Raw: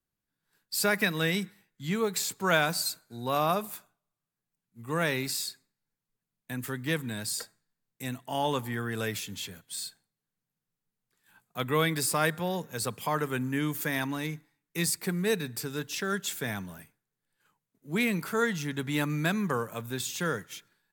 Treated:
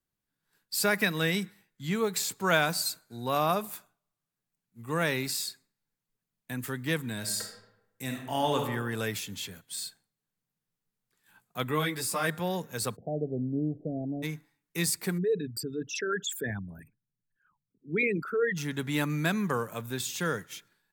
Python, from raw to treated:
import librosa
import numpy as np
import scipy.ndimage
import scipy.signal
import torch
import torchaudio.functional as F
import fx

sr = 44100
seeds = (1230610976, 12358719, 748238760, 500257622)

y = fx.reverb_throw(x, sr, start_s=7.18, length_s=1.43, rt60_s=0.92, drr_db=2.5)
y = fx.ensemble(y, sr, at=(11.71, 12.27), fade=0.02)
y = fx.steep_lowpass(y, sr, hz=720.0, slope=96, at=(12.95, 14.22), fade=0.02)
y = fx.envelope_sharpen(y, sr, power=3.0, at=(15.17, 18.56), fade=0.02)